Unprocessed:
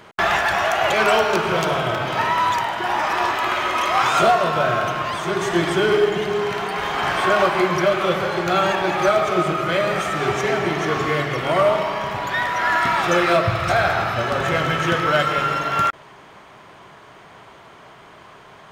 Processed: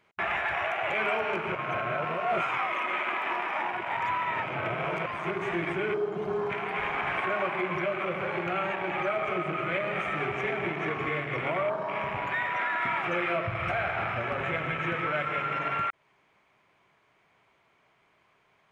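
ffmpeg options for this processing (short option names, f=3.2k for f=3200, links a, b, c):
-filter_complex "[0:a]asplit=3[a][b][c];[a]atrim=end=1.552[d];[b]atrim=start=1.548:end=5.062,asetpts=PTS-STARTPTS,areverse[e];[c]atrim=start=5.058[f];[d][e]acrossfade=d=0.004:c1=hsin:c2=hsin[g];[g][f]acrossfade=d=0.004:c1=hsin:c2=hsin,alimiter=limit=-14.5dB:level=0:latency=1:release=232,afwtdn=0.0398,equalizer=f=2.3k:w=3.5:g=9.5,volume=-7dB"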